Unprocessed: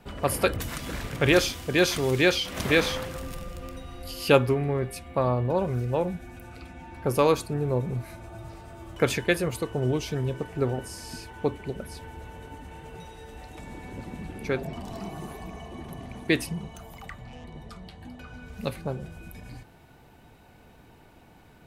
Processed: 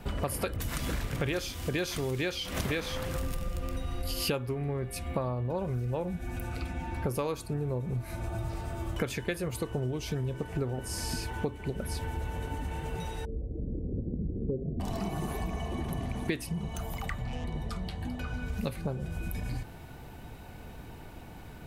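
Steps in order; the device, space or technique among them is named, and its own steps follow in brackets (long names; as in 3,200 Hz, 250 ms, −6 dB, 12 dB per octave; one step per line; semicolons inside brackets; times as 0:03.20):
0:13.25–0:14.80: Butterworth low-pass 520 Hz 48 dB per octave
ASMR close-microphone chain (low-shelf EQ 110 Hz +8 dB; downward compressor 8 to 1, threshold −34 dBFS, peak gain reduction 21.5 dB; high-shelf EQ 9,800 Hz +4 dB)
level +5 dB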